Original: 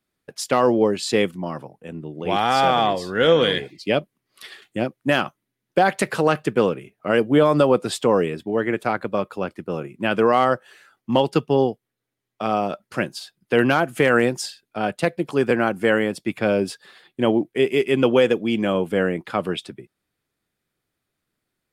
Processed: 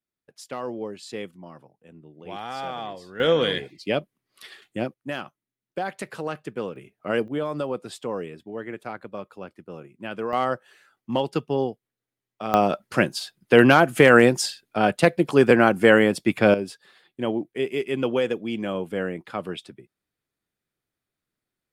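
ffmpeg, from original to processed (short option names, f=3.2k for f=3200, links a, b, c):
-af "asetnsamples=n=441:p=0,asendcmd='3.2 volume volume -4dB;4.94 volume volume -12dB;6.76 volume volume -5.5dB;7.28 volume volume -12dB;10.33 volume volume -6dB;12.54 volume volume 3.5dB;16.54 volume volume -7dB',volume=-14.5dB"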